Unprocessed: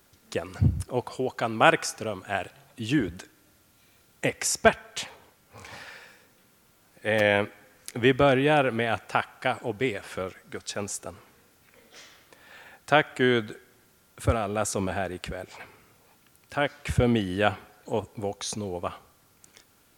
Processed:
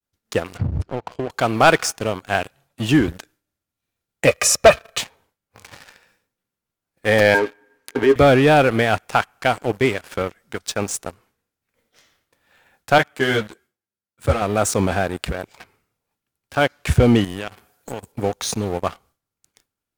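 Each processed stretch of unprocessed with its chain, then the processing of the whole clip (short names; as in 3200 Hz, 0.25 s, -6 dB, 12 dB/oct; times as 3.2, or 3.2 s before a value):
0.57–1.3 LPF 4900 Hz + high shelf 2800 Hz -8.5 dB + compressor 16:1, threshold -28 dBFS
4.27–4.98 comb 1.7 ms, depth 52% + small resonant body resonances 580/1200/2500/4000 Hz, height 11 dB, ringing for 30 ms
7.34–8.16 tone controls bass -10 dB, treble -8 dB + compressor 3:1, threshold -31 dBFS + small resonant body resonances 290/410/910/1600 Hz, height 16 dB, ringing for 90 ms
12.98–14.42 HPF 90 Hz + ensemble effect
17.24–18.12 HPF 56 Hz + high shelf 6400 Hz +11.5 dB + compressor, threshold -33 dBFS
whole clip: expander -50 dBFS; low shelf 79 Hz +7 dB; sample leveller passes 3; gain -2.5 dB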